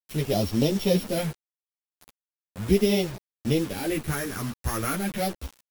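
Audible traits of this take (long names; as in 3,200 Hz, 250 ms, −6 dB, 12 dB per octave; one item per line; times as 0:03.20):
a buzz of ramps at a fixed pitch in blocks of 8 samples
phaser sweep stages 4, 0.39 Hz, lowest notch 660–1,600 Hz
a quantiser's noise floor 6 bits, dither none
a shimmering, thickened sound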